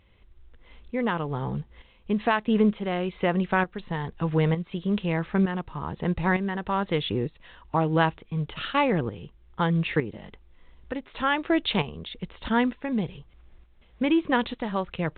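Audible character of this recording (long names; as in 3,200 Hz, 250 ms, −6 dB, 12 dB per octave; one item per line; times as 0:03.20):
tremolo saw up 1.1 Hz, depth 65%
mu-law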